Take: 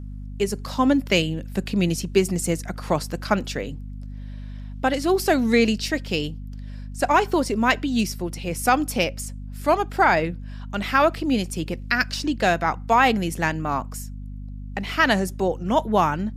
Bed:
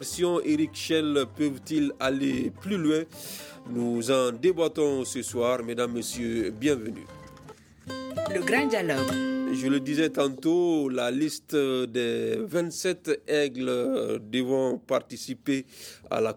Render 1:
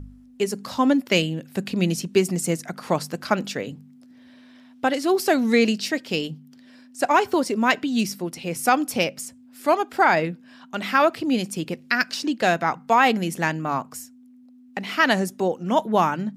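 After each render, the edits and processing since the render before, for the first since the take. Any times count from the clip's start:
hum removal 50 Hz, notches 4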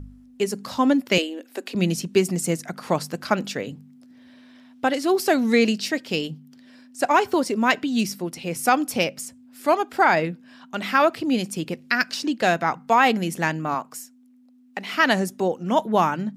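0:01.18–0:01.75: elliptic high-pass filter 270 Hz
0:13.74–0:14.94: high-pass filter 350 Hz 6 dB per octave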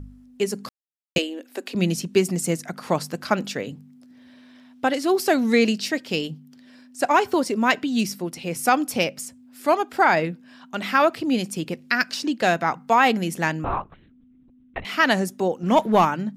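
0:00.69–0:01.16: silence
0:13.64–0:14.85: linear-prediction vocoder at 8 kHz whisper
0:15.63–0:16.05: leveller curve on the samples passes 1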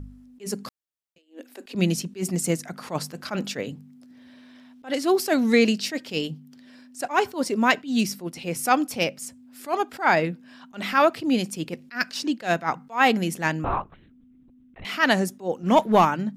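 level that may rise only so fast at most 240 dB per second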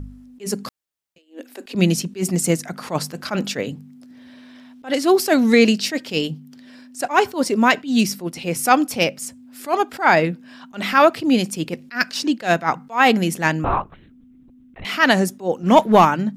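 level +5.5 dB
brickwall limiter −2 dBFS, peak gain reduction 2.5 dB

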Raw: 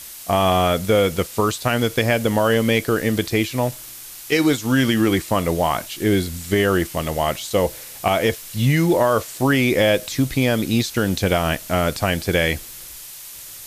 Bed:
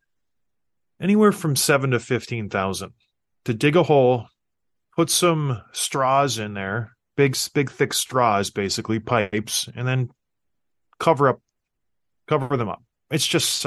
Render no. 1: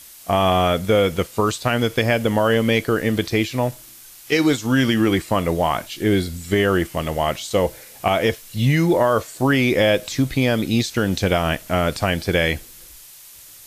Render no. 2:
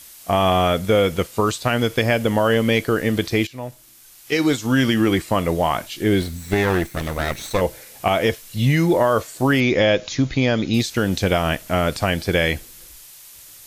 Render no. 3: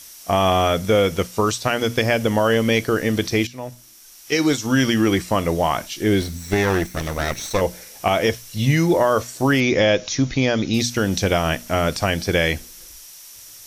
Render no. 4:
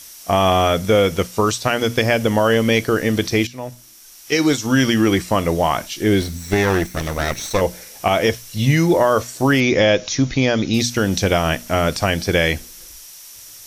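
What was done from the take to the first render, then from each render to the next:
noise reduction from a noise print 6 dB
0:03.47–0:04.65: fade in, from −13.5 dB; 0:06.21–0:07.61: lower of the sound and its delayed copy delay 0.51 ms; 0:09.60–0:10.74: linear-phase brick-wall low-pass 7,200 Hz
parametric band 5,700 Hz +11 dB 0.22 octaves; mains-hum notches 60/120/180/240 Hz
level +2 dB; brickwall limiter −2 dBFS, peak gain reduction 1 dB

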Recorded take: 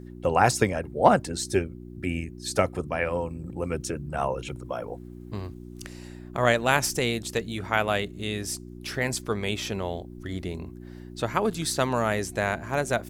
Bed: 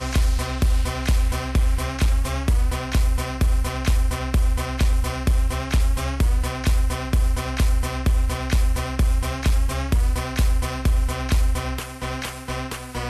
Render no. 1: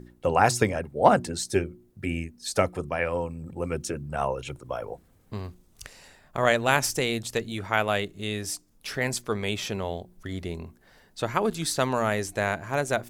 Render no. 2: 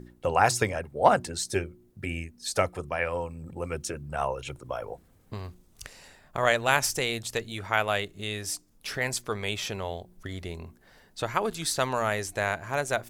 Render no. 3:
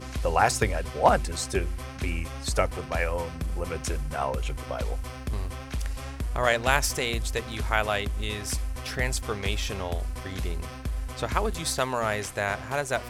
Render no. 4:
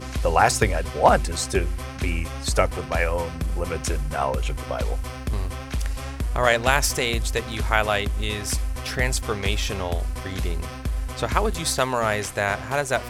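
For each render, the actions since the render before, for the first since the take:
hum removal 60 Hz, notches 6
dynamic equaliser 230 Hz, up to −7 dB, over −40 dBFS, Q 0.71
mix in bed −12 dB
level +4.5 dB; brickwall limiter −3 dBFS, peak gain reduction 2.5 dB

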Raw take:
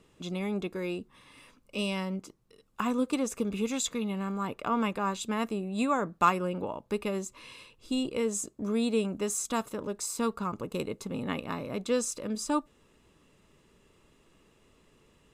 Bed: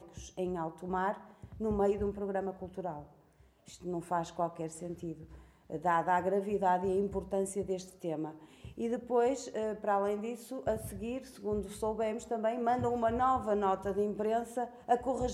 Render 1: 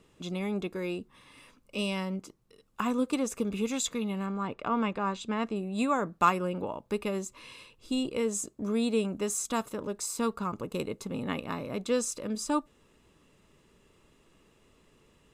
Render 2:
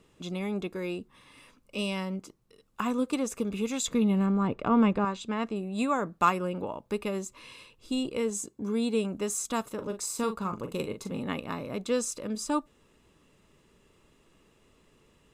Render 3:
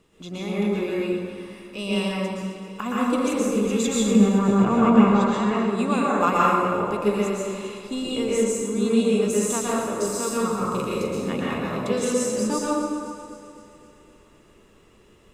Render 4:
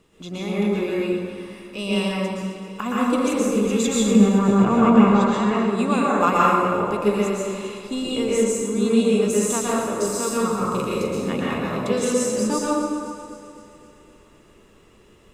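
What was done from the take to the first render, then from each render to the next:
0:04.26–0:05.56: high-frequency loss of the air 94 metres
0:03.88–0:05.05: low-shelf EQ 490 Hz +10 dB; 0:08.30–0:08.95: notch comb filter 630 Hz; 0:09.74–0:11.23: double-tracking delay 41 ms −8.5 dB
on a send: delay that swaps between a low-pass and a high-pass 129 ms, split 860 Hz, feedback 75%, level −10 dB; on the sum: dense smooth reverb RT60 1.6 s, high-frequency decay 0.55×, pre-delay 105 ms, DRR −6.5 dB
level +2 dB; brickwall limiter −2 dBFS, peak gain reduction 1 dB

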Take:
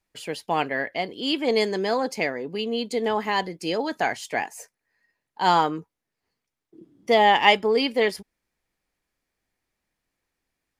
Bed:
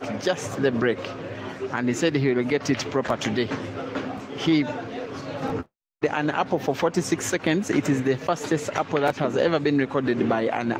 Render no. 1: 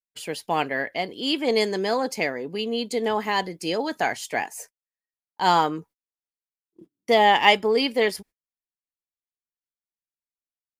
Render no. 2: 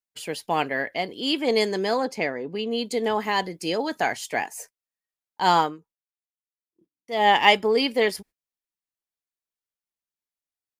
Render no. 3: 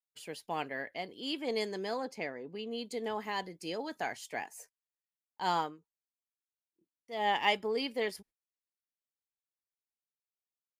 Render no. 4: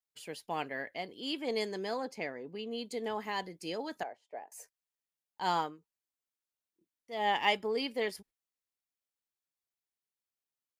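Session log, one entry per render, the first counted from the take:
noise gate −47 dBFS, range −30 dB; high-shelf EQ 7,900 Hz +7 dB
0:02.05–0:02.71: low-pass filter 3,100 Hz 6 dB per octave; 0:05.60–0:07.29: duck −15.5 dB, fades 0.18 s
level −12 dB
0:04.03–0:04.52: resonant band-pass 580 Hz, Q 2.6

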